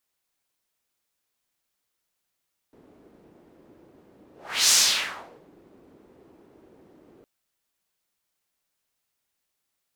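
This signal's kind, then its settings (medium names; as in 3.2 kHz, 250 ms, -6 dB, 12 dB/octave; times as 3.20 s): whoosh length 4.51 s, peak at 1.98 s, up 0.40 s, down 0.81 s, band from 340 Hz, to 6.2 kHz, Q 1.8, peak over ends 37.5 dB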